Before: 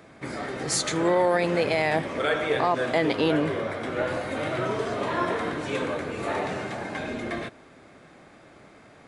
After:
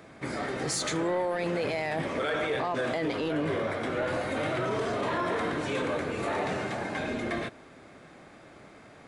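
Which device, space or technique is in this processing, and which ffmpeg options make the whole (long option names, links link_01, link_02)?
soft clipper into limiter: -af "asoftclip=type=tanh:threshold=-13dB,alimiter=limit=-22dB:level=0:latency=1:release=11"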